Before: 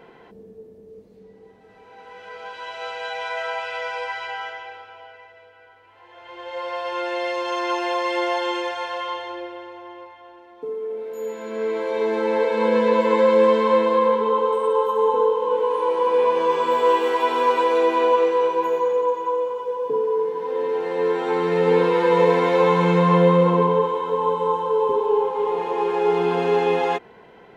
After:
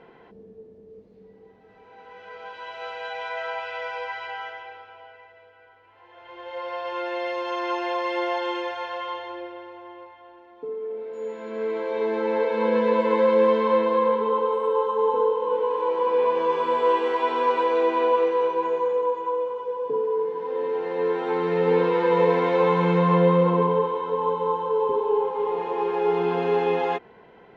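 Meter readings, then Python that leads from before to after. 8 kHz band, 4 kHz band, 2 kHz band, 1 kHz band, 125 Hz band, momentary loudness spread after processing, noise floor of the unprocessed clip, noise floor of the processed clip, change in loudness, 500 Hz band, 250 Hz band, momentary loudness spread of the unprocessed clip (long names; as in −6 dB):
can't be measured, −5.5 dB, −4.0 dB, −3.0 dB, −2.5 dB, 14 LU, −49 dBFS, −52 dBFS, −3.0 dB, −3.0 dB, −2.5 dB, 14 LU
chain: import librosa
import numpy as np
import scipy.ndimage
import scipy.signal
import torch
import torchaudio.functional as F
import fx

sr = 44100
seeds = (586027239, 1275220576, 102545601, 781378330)

y = fx.air_absorb(x, sr, metres=130.0)
y = y * librosa.db_to_amplitude(-2.5)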